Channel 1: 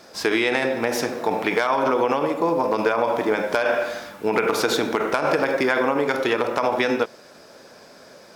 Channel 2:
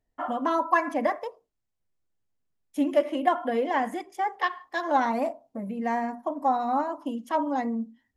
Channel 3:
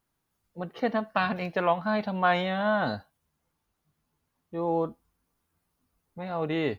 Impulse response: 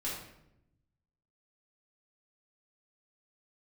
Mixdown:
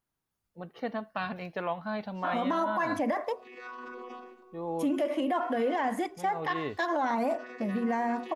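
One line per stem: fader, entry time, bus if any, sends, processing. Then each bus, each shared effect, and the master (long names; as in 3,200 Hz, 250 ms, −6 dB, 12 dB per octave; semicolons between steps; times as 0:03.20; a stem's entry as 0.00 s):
−16.0 dB, 2.00 s, send −21 dB, channel vocoder with a chord as carrier bare fifth, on B3; tilt shelving filter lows −9 dB, about 650 Hz; brickwall limiter −19.5 dBFS, peak gain reduction 10 dB; automatic ducking −22 dB, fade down 0.35 s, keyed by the third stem
+2.5 dB, 2.05 s, no send, no processing
−7.0 dB, 0.00 s, no send, no processing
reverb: on, RT60 0.80 s, pre-delay 3 ms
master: brickwall limiter −21 dBFS, peak gain reduction 14 dB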